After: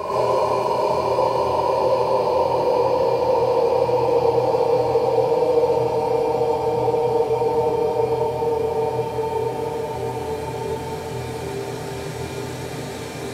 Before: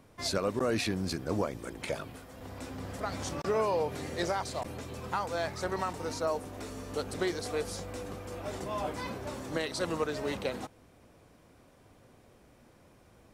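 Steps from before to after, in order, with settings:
extreme stretch with random phases 46×, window 0.25 s, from 0:03.69
reverb whose tail is shaped and stops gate 170 ms rising, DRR −8 dB

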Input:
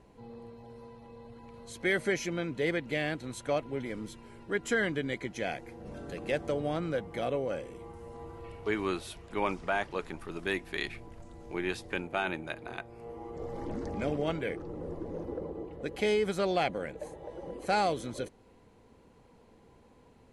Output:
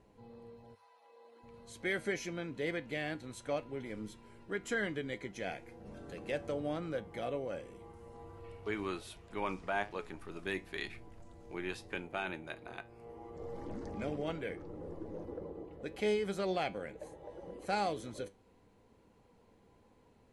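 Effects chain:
0:00.74–0:01.42: high-pass filter 920 Hz → 280 Hz 24 dB per octave
flanger 1 Hz, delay 9.3 ms, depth 1.4 ms, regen +76%
level −1.5 dB

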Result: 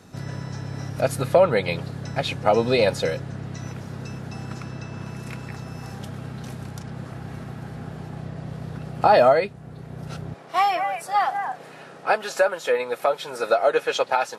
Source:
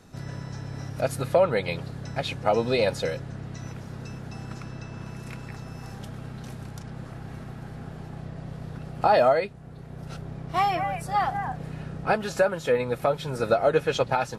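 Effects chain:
high-pass filter 70 Hz 12 dB per octave, from 0:10.34 490 Hz
level +4 dB

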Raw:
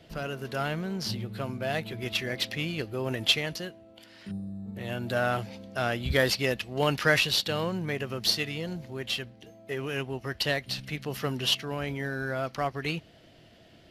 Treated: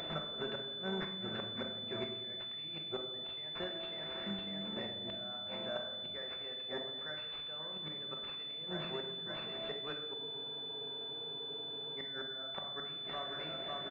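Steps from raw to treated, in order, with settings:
repeating echo 549 ms, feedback 55%, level −18 dB
gate with flip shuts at −23 dBFS, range −34 dB
high-pass filter 950 Hz 6 dB per octave
downward compressor 5 to 1, threshold −57 dBFS, peak gain reduction 20.5 dB
rectangular room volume 620 cubic metres, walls mixed, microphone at 1.1 metres
upward compression, threshold −60 dBFS
frozen spectrum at 0:10.16, 1.80 s
switching amplifier with a slow clock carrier 3,500 Hz
level +17 dB

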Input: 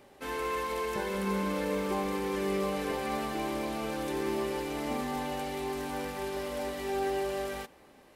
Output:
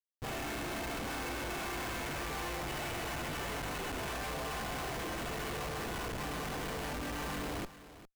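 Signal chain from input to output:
gate on every frequency bin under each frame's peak −15 dB weak
low-pass filter 3,800 Hz 24 dB per octave
comb filter 2.7 ms, depth 44%
in parallel at +1 dB: downward compressor, threshold −40 dBFS, peak gain reduction 5 dB
on the sum: comparator with hysteresis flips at −39 dBFS
on a send: single-tap delay 403 ms −15 dB

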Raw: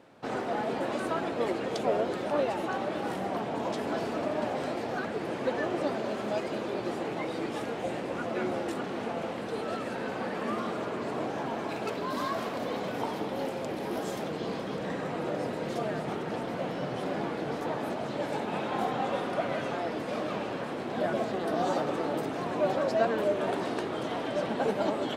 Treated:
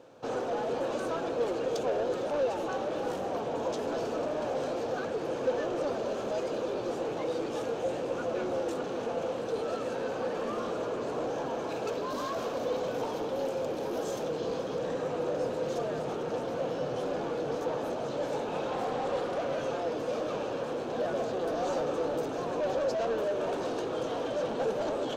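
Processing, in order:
soft clipping −29 dBFS, distortion −12 dB
thirty-one-band graphic EQ 200 Hz −6 dB, 500 Hz +9 dB, 2,000 Hz −9 dB, 6,300 Hz +7 dB, 10,000 Hz −5 dB
0:18.72–0:19.39: highs frequency-modulated by the lows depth 0.26 ms

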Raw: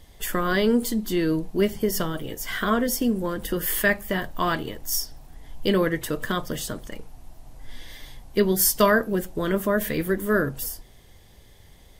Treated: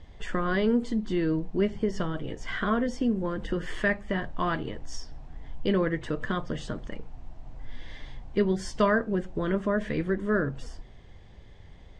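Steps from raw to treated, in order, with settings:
Butterworth low-pass 7,800 Hz 36 dB per octave
bass and treble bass +3 dB, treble −14 dB
in parallel at +0.5 dB: downward compressor, threshold −31 dBFS, peak gain reduction 17.5 dB
on the sum: level −6.5 dB

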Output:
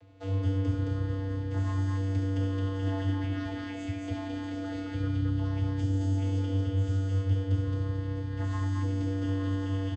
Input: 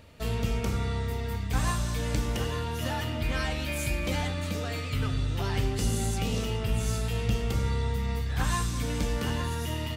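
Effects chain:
speech leveller 0.5 s
channel vocoder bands 16, square 96.3 Hz
on a send: loudspeakers that aren't time-aligned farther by 24 metres −8 dB, 75 metres −2 dB, 87 metres −12 dB

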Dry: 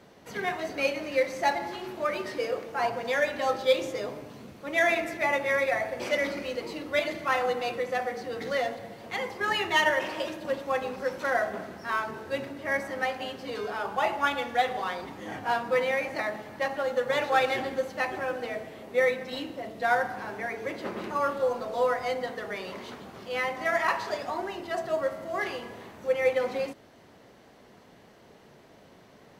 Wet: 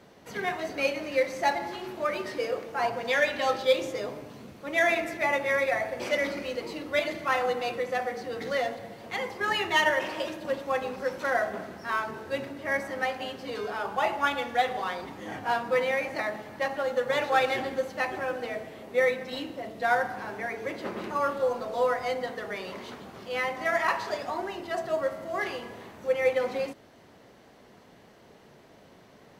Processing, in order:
0:02.96–0:03.67: dynamic equaliser 3,100 Hz, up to +6 dB, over −42 dBFS, Q 0.89

